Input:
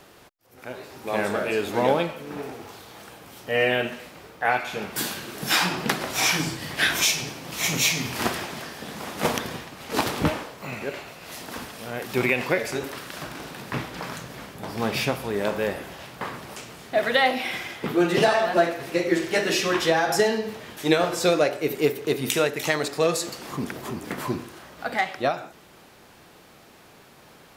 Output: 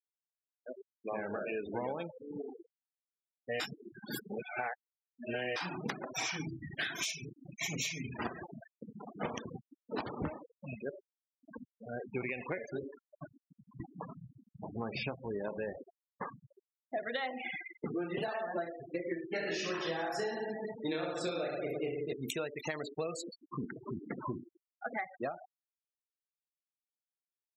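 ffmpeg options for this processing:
-filter_complex "[0:a]asettb=1/sr,asplit=3[s0][s1][s2];[s0]atrim=end=13.294[s3];[s1]atrim=start=13.29:end=13.8,asetpts=PTS-STARTPTS,afade=t=in:d=0.004:c=qsin,afade=t=out:st=0.506:d=0.004:c=qsin,acompressor=threshold=0.0178:ratio=8:attack=3.2:release=140:knee=1:detection=peak[s4];[s2]atrim=start=13.796[s5];[s3][s4]acrossfade=d=0.004:c1=hsin:c2=qsin[s6];[s6][s5]acrossfade=d=0.004:c1=qsin:c2=hsin,asettb=1/sr,asplit=3[s7][s8][s9];[s7]atrim=end=19.294[s10];[s8]atrim=start=19.29:end=22.13,asetpts=PTS-STARTPTS,afade=t=in:d=0.004:c=qsin,afade=t=out:st=2.836:d=0.004:c=qsin,aecho=1:1:30|67.5|114.4|173|246.2|337.8|452.2:0.794|0.631|0.501|0.398|0.316|0.251|0.2,atrim=end_sample=125244[s11];[s9]atrim=start=22.126[s12];[s10][s11]acrossfade=d=0.004:c1=hsin:c2=qsin[s13];[s13][s12]acrossfade=d=0.004:c1=qsin:c2=hsin,asplit=3[s14][s15][s16];[s14]atrim=end=3.602[s17];[s15]atrim=start=3.598:end=5.562,asetpts=PTS-STARTPTS,areverse[s18];[s16]atrim=start=5.558[s19];[s17][s18]acrossfade=d=0.004:c1=hsin:c2=hsin[s20];[s20][s19]acrossfade=d=0.004:c1=hsin:c2=hsin,afftfilt=real='re*gte(hypot(re,im),0.0708)':imag='im*gte(hypot(re,im),0.0708)':win_size=1024:overlap=0.75,acompressor=threshold=0.0398:ratio=6,volume=0.501"

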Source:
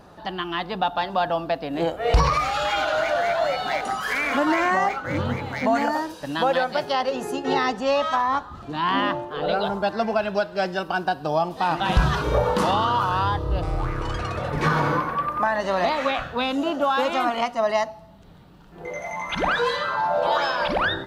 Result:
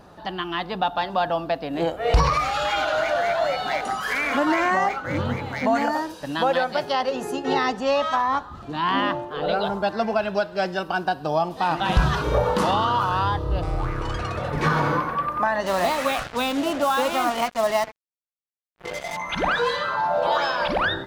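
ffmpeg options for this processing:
-filter_complex "[0:a]asettb=1/sr,asplit=3[s0][s1][s2];[s0]atrim=end=15.664[s3];[s1]atrim=start=15.66:end=19.17,asetpts=PTS-STARTPTS,afade=t=in:d=0.004:c=qsin,afade=t=out:st=3.506:d=0.004:c=qsin,acrusher=bits=4:mix=0:aa=0.5[s4];[s2]atrim=start=19.166[s5];[s3][s4]acrossfade=d=0.004:c1=hsin:c2=qsin[s6];[s6][s5]acrossfade=d=0.004:c1=qsin:c2=hsin"

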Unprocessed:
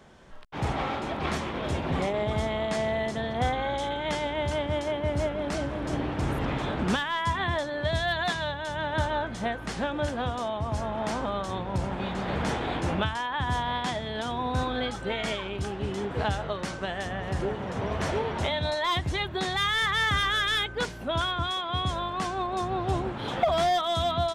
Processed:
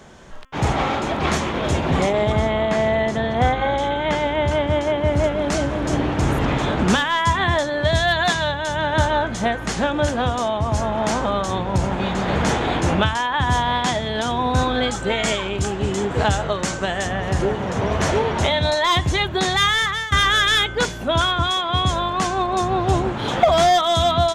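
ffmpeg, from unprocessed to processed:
-filter_complex "[0:a]asettb=1/sr,asplit=3[s0][s1][s2];[s0]atrim=end=2.324[s3];[s1]atrim=start=2.32:end=5.24,asetpts=PTS-STARTPTS,afade=t=in:d=0.004:c=qsin,afade=t=out:st=2.916:d=0.004:c=qsin,acrossover=split=3300[s4][s5];[s5]acompressor=threshold=0.00224:ratio=4:attack=1:release=60[s6];[s4][s6]amix=inputs=2:normalize=0[s7];[s2]atrim=start=5.236[s8];[s3][s7]acrossfade=d=0.004:c1=hsin:c2=qsin[s9];[s9][s8]acrossfade=d=0.004:c1=qsin:c2=hsin,asettb=1/sr,asplit=3[s10][s11][s12];[s10]atrim=end=14.824[s13];[s11]atrim=start=14.82:end=17.07,asetpts=PTS-STARTPTS,afade=t=in:d=0.004:c=qsin,afade=t=out:st=2.246:d=0.004:c=qsin,equalizer=f=7600:w=3.3:g=6[s14];[s12]atrim=start=17.066[s15];[s13][s14]acrossfade=d=0.004:c1=hsin:c2=qsin[s16];[s16][s15]acrossfade=d=0.004:c1=qsin:c2=hsin,asplit=2[s17][s18];[s17]atrim=end=20.12,asetpts=PTS-STARTPTS,afade=t=out:st=19.65:d=0.47:silence=0.133352[s19];[s18]atrim=start=20.12,asetpts=PTS-STARTPTS,afade=t=in:d=0.004:c=hsin:silence=0.133352[s20];[s19][s20]concat=n=2:v=0:a=1,equalizer=f=6700:t=o:w=0.39:g=6.5,bandreject=f=264.2:t=h:w=4,bandreject=f=528.4:t=h:w=4,bandreject=f=792.6:t=h:w=4,bandreject=f=1056.8:t=h:w=4,bandreject=f=1321:t=h:w=4,bandreject=f=1585.2:t=h:w=4,bandreject=f=1849.4:t=h:w=4,bandreject=f=2113.6:t=h:w=4,bandreject=f=2377.8:t=h:w=4,bandreject=f=2642:t=h:w=4,bandreject=f=2906.2:t=h:w=4,bandreject=f=3170.4:t=h:w=4,bandreject=f=3434.6:t=h:w=4,volume=2.82"

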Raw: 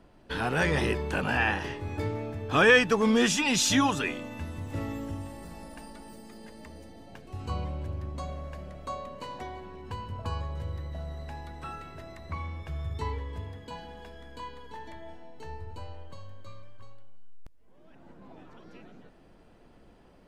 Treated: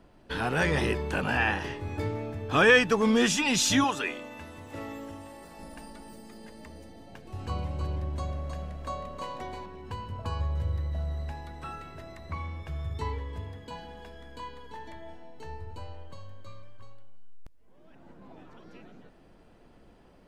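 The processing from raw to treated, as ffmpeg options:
-filter_complex "[0:a]asettb=1/sr,asplit=3[s0][s1][s2];[s0]atrim=end=3.844[s3];[s1]atrim=start=3.84:end=5.59,asetpts=PTS-STARTPTS,afade=t=in:d=0.004:c=qsin,afade=t=out:st=1.746:d=0.004:c=qsin,bass=f=250:g=-12,treble=f=4000:g=-2[s4];[s2]atrim=start=5.586[s5];[s3][s4]acrossfade=d=0.004:c1=hsin:c2=qsin[s6];[s6][s5]acrossfade=d=0.004:c1=qsin:c2=hsin,asettb=1/sr,asplit=3[s7][s8][s9];[s7]atrim=end=6.944[s10];[s8]atrim=start=6.94:end=9.66,asetpts=PTS-STARTPTS,afade=t=in:d=0.004:c=qsin,afade=t=out:st=2.716:d=0.004:c=qsin,aecho=1:1:315:0.596,atrim=end_sample=119952[s11];[s9]atrim=start=9.656[s12];[s10][s11]acrossfade=d=0.004:c1=hsin:c2=qsin[s13];[s13][s12]acrossfade=d=0.004:c1=qsin:c2=hsin,asettb=1/sr,asplit=3[s14][s15][s16];[s14]atrim=end=10.394[s17];[s15]atrim=start=10.39:end=11.32,asetpts=PTS-STARTPTS,afade=t=in:d=0.004:c=qsin,afade=t=out:st=0.926:d=0.004:c=qsin,equalizer=f=69:w=1:g=6.5[s18];[s16]atrim=start=11.316[s19];[s17][s18]acrossfade=d=0.004:c1=hsin:c2=qsin[s20];[s20][s19]acrossfade=d=0.004:c1=qsin:c2=hsin"

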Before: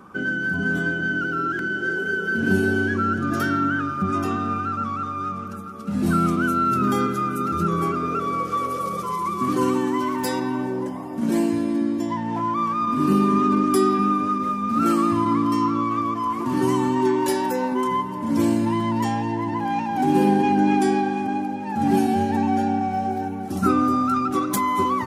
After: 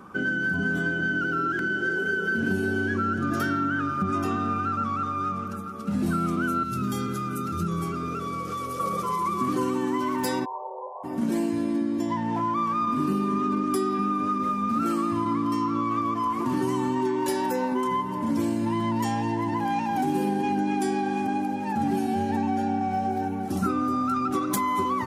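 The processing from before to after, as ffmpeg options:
-filter_complex "[0:a]asettb=1/sr,asplit=3[s0][s1][s2];[s0]atrim=end=6.634[s3];[s1]atrim=start=6.63:end=8.8,asetpts=PTS-STARTPTS,afade=t=in:d=0.004:c=qsin,afade=t=out:st=2.166:d=0.004:c=qsin,acrossover=split=190|3000[s4][s5][s6];[s5]acompressor=threshold=0.0316:ratio=6:attack=3.2:release=140:knee=2.83:detection=peak[s7];[s4][s7][s6]amix=inputs=3:normalize=0[s8];[s2]atrim=start=8.796[s9];[s3][s8]acrossfade=d=0.004:c1=hsin:c2=qsin[s10];[s10][s9]acrossfade=d=0.004:c1=qsin:c2=hsin,asplit=3[s11][s12][s13];[s11]afade=t=out:st=10.44:d=0.02[s14];[s12]asuperpass=centerf=680:order=20:qfactor=1,afade=t=in:st=10.44:d=0.02,afade=t=out:st=11.03:d=0.02[s15];[s13]afade=t=in:st=11.03:d=0.02[s16];[s14][s15][s16]amix=inputs=3:normalize=0,asettb=1/sr,asplit=3[s17][s18][s19];[s17]atrim=end=18.994[s20];[s18]atrim=start=18.99:end=21.73,asetpts=PTS-STARTPTS,afade=t=in:d=0.004:c=qsin,afade=t=out:st=2.736:d=0.004:c=qsin,highshelf=f=6300:g=7[s21];[s19]atrim=start=21.726[s22];[s20][s21]acrossfade=d=0.004:c1=hsin:c2=qsin[s23];[s23][s22]acrossfade=d=0.004:c1=qsin:c2=hsin,acompressor=threshold=0.0794:ratio=6"

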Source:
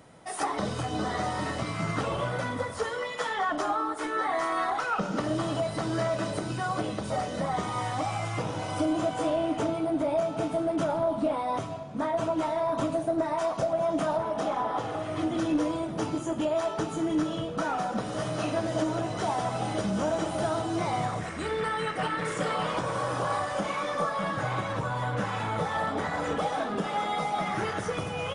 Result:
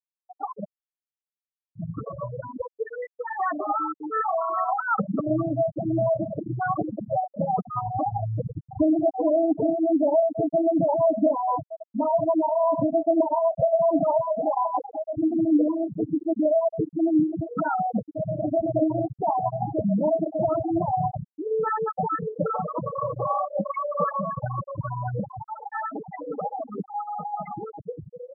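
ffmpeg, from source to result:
-filter_complex "[0:a]asettb=1/sr,asplit=3[s0][s1][s2];[s0]atrim=end=25.434[s3];[s1]atrim=start=25.43:end=25.9,asetpts=PTS-STARTPTS,afade=t=in:d=0.004:c=qsin,afade=t=out:st=0.466:d=0.004:c=qsin,highpass=640,lowpass=7000[s4];[s2]atrim=start=25.896[s5];[s3][s4]acrossfade=d=0.004:c1=hsin:c2=qsin[s6];[s6][s5]acrossfade=d=0.004:c1=qsin:c2=hsin,asplit=3[s7][s8][s9];[s7]atrim=end=0.65,asetpts=PTS-STARTPTS,afade=t=out:st=0.646:d=0.004:c=hsin[s10];[s8]atrim=start=0.65:end=1.75,asetpts=PTS-STARTPTS,volume=0[s11];[s9]atrim=start=1.75,asetpts=PTS-STARTPTS,afade=t=in:d=0.004:c=hsin[s12];[s10][s11][s12]concat=n=3:v=0:a=1,acrossover=split=3500[s13][s14];[s14]acompressor=threshold=0.00251:ratio=4:attack=1:release=60[s15];[s13][s15]amix=inputs=2:normalize=0,afftfilt=real='re*gte(hypot(re,im),0.158)':imag='im*gte(hypot(re,im),0.158)':win_size=1024:overlap=0.75,dynaudnorm=f=570:g=13:m=2.24"

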